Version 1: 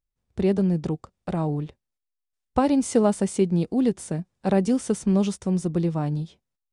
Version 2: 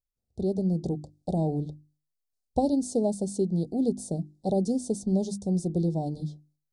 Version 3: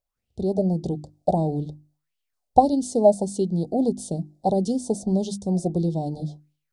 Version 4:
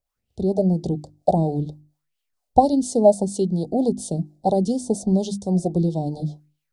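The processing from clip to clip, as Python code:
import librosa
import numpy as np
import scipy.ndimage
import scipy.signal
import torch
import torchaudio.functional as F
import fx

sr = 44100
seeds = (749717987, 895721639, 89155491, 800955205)

y1 = scipy.signal.sosfilt(scipy.signal.ellip(3, 1.0, 40, [740.0, 4100.0], 'bandstop', fs=sr, output='sos'), x)
y1 = fx.hum_notches(y1, sr, base_hz=50, count=7)
y1 = fx.rider(y1, sr, range_db=3, speed_s=0.5)
y1 = F.gain(torch.from_numpy(y1), -2.5).numpy()
y2 = fx.bell_lfo(y1, sr, hz=1.6, low_hz=620.0, high_hz=3100.0, db=16)
y2 = F.gain(torch.from_numpy(y2), 2.5).numpy()
y3 = fx.harmonic_tremolo(y2, sr, hz=4.3, depth_pct=50, crossover_hz=410.0)
y3 = F.gain(torch.from_numpy(y3), 4.5).numpy()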